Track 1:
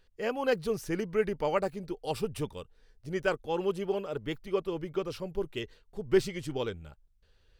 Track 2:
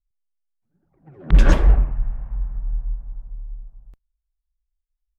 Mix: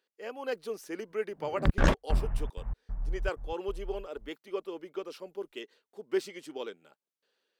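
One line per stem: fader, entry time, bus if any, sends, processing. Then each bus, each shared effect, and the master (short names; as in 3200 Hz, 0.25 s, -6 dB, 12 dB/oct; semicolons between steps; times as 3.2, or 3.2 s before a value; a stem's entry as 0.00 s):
-8.5 dB, 0.00 s, no send, HPF 250 Hz 24 dB/oct
-4.0 dB, 0.35 s, no send, step gate "..xxxxx.xx" 189 bpm -60 dB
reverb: off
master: low shelf 88 Hz -9.5 dB; AGC gain up to 4 dB; core saturation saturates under 120 Hz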